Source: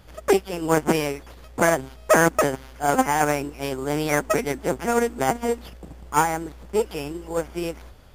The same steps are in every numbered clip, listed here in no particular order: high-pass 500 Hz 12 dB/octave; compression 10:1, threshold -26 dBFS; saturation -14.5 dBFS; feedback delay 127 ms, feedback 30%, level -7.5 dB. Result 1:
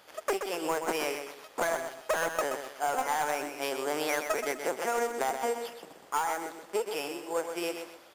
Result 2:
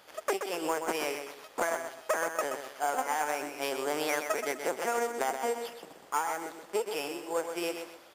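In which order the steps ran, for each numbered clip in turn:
high-pass > saturation > compression > feedback delay; high-pass > compression > saturation > feedback delay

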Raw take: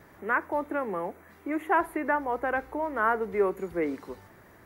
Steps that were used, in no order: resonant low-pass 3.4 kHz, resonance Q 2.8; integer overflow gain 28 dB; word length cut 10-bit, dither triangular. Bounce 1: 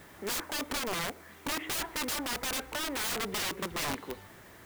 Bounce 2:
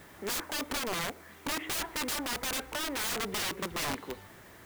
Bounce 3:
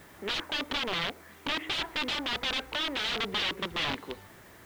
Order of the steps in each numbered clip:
resonant low-pass > word length cut > integer overflow; resonant low-pass > integer overflow > word length cut; integer overflow > resonant low-pass > word length cut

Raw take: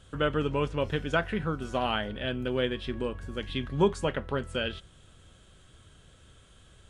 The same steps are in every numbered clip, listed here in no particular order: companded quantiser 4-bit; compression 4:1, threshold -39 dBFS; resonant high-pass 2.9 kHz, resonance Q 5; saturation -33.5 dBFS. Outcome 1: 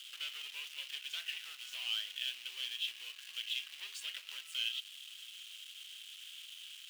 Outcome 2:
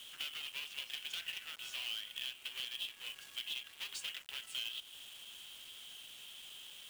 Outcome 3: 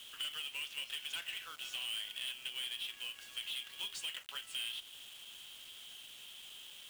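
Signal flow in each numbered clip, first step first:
saturation > companded quantiser > compression > resonant high-pass; saturation > resonant high-pass > companded quantiser > compression; resonant high-pass > saturation > companded quantiser > compression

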